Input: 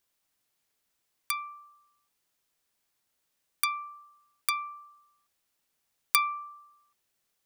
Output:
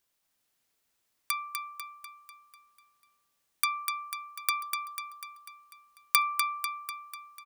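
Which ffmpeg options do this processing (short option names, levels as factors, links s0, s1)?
-af "aecho=1:1:247|494|741|988|1235|1482|1729:0.531|0.292|0.161|0.0883|0.0486|0.0267|0.0147"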